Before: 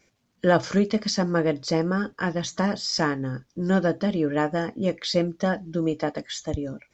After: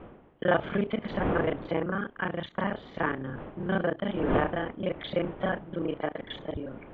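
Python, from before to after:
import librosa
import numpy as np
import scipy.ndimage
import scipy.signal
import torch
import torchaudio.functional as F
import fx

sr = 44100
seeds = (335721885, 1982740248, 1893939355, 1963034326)

y = fx.local_reverse(x, sr, ms=30.0)
y = fx.dmg_wind(y, sr, seeds[0], corner_hz=410.0, level_db=-32.0)
y = scipy.signal.sosfilt(scipy.signal.ellip(4, 1.0, 40, 3300.0, 'lowpass', fs=sr, output='sos'), y)
y = fx.low_shelf(y, sr, hz=410.0, db=-6.0)
y = y * 10.0 ** (-1.5 / 20.0)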